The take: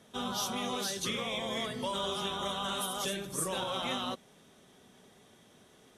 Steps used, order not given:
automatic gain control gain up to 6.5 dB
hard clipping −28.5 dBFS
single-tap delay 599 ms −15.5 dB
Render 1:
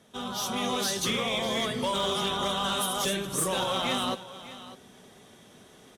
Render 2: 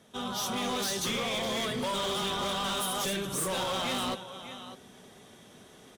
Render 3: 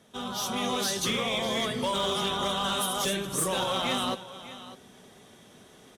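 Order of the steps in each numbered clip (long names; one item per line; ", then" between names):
hard clipping, then single-tap delay, then automatic gain control
single-tap delay, then automatic gain control, then hard clipping
single-tap delay, then hard clipping, then automatic gain control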